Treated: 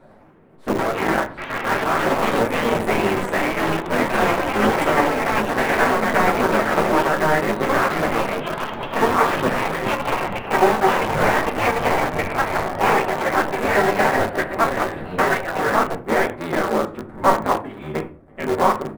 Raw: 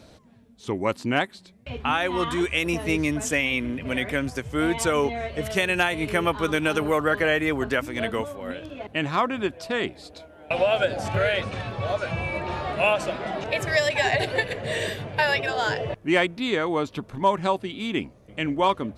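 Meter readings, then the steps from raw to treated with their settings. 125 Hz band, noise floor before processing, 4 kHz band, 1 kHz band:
+2.5 dB, -52 dBFS, -0.5 dB, +9.0 dB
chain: cycle switcher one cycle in 3, inverted; high-order bell 4 kHz -11.5 dB; hum notches 60/120/180/240/300/360/420 Hz; flange 1.7 Hz, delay 7 ms, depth 6.7 ms, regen -3%; simulated room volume 270 m³, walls furnished, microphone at 1.1 m; ever faster or slower copies 92 ms, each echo +3 st, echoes 3; tone controls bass -5 dB, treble -14 dB; speakerphone echo 90 ms, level -22 dB; in parallel at -11 dB: bit crusher 4-bit; on the sum: random flutter of the level, depth 55%; trim +6 dB

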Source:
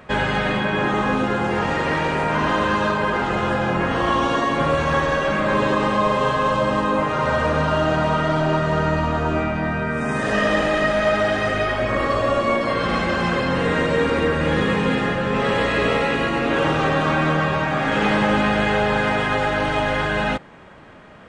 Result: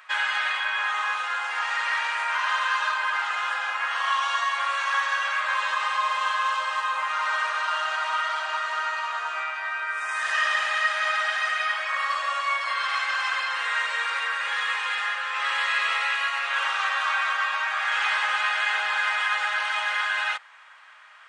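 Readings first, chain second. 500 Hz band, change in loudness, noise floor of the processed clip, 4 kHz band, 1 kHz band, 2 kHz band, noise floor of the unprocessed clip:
-22.5 dB, -4.5 dB, -33 dBFS, 0.0 dB, -4.0 dB, 0.0 dB, -25 dBFS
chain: high-pass 1.1 kHz 24 dB/octave

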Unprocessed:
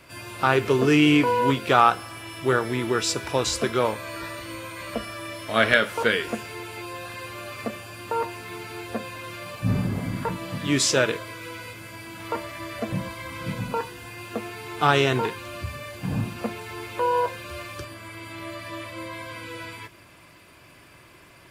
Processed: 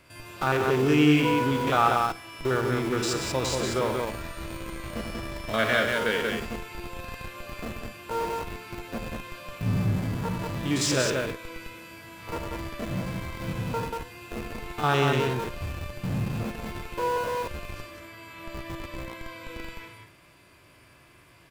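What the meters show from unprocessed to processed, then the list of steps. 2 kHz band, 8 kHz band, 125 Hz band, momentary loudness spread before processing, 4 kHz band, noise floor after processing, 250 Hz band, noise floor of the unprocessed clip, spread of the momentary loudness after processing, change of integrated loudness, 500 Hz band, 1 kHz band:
-4.0 dB, -3.5 dB, 0.0 dB, 17 LU, -3.5 dB, -55 dBFS, -1.5 dB, -51 dBFS, 17 LU, -2.5 dB, -2.5 dB, -3.5 dB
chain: spectrogram pixelated in time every 50 ms; bass shelf 99 Hz +4.5 dB; loudspeakers at several distances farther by 32 m -9 dB, 64 m -4 dB; in parallel at -6 dB: Schmitt trigger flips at -27 dBFS; on the sum: trim -5.5 dB

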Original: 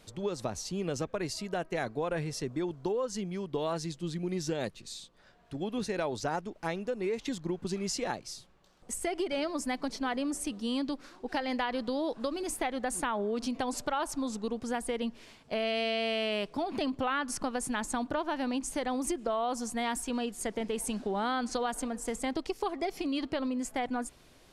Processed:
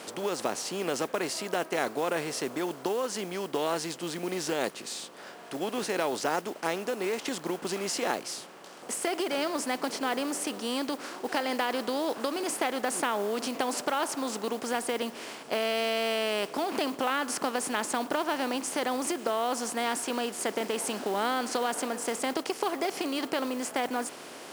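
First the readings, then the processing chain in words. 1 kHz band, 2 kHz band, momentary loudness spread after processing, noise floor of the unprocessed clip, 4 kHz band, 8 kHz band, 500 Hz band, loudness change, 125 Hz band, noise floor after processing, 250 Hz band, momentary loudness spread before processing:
+4.0 dB, +4.5 dB, 5 LU, -59 dBFS, +4.5 dB, +4.5 dB, +3.0 dB, +3.0 dB, -6.0 dB, -46 dBFS, 0.0 dB, 5 LU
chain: spectral levelling over time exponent 0.6; modulation noise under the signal 21 dB; high-pass 270 Hz 12 dB/octave

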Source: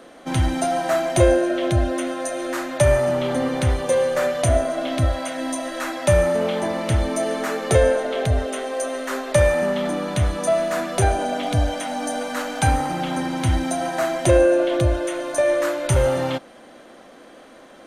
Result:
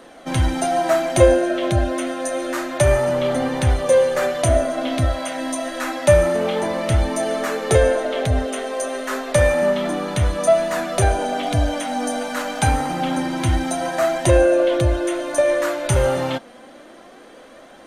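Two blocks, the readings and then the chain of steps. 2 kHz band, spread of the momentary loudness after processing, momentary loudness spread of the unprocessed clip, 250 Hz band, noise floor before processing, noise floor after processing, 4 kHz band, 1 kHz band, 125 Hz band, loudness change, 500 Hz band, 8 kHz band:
+1.5 dB, 9 LU, 9 LU, +1.0 dB, -45 dBFS, -44 dBFS, +1.5 dB, +1.5 dB, +1.0 dB, +1.5 dB, +2.0 dB, +1.5 dB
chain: flange 0.28 Hz, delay 1 ms, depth 4.1 ms, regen +67%; trim +6 dB

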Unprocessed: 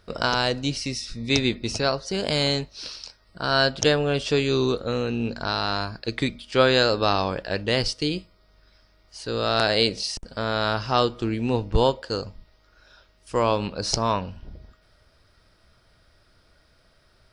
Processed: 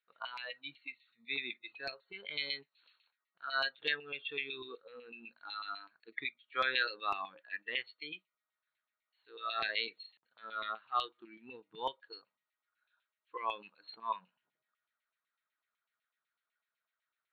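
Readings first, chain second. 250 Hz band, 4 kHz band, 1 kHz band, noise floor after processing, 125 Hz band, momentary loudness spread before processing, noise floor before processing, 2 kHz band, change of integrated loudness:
-30.0 dB, -15.0 dB, -12.5 dB, under -85 dBFS, under -35 dB, 11 LU, -61 dBFS, -9.5 dB, -14.5 dB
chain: FFT band-pass 110–4400 Hz; treble shelf 2.1 kHz +10 dB; LFO band-pass saw down 8 Hz 960–2600 Hz; band-stop 580 Hz, Q 12; spectral noise reduction 17 dB; trim -7.5 dB

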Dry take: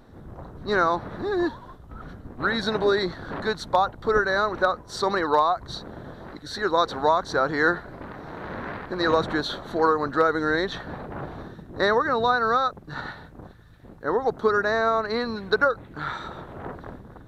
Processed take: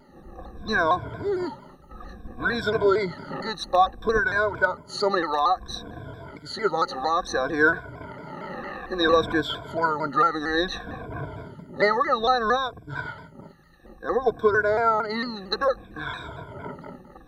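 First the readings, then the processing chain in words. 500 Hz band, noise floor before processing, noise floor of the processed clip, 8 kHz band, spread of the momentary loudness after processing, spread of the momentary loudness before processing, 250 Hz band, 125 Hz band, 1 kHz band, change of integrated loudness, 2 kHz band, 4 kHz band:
-0.5 dB, -47 dBFS, -49 dBFS, +1.0 dB, 17 LU, 18 LU, -1.0 dB, -0.5 dB, 0.0 dB, -0.5 dB, +1.0 dB, +0.5 dB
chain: drifting ripple filter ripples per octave 1.7, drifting -0.59 Hz, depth 24 dB; vibrato with a chosen wave saw down 4.4 Hz, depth 100 cents; trim -5.5 dB

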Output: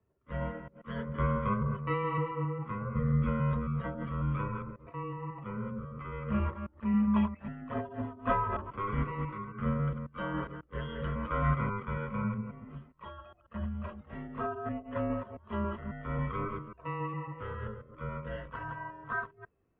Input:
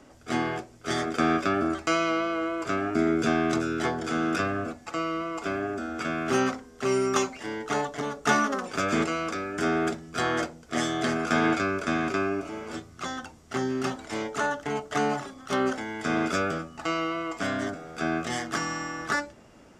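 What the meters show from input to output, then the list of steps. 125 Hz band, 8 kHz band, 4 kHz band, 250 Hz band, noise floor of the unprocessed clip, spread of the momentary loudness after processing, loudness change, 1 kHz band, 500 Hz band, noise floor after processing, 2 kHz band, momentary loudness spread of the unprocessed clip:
+4.5 dB, under -40 dB, -20.0 dB, -6.0 dB, -52 dBFS, 12 LU, -6.5 dB, -7.5 dB, -10.0 dB, -64 dBFS, -13.0 dB, 8 LU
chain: chunks repeated in reverse 136 ms, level -4 dB; mistuned SSB -180 Hz 220–3400 Hz; spectral contrast expander 1.5:1; trim -6.5 dB

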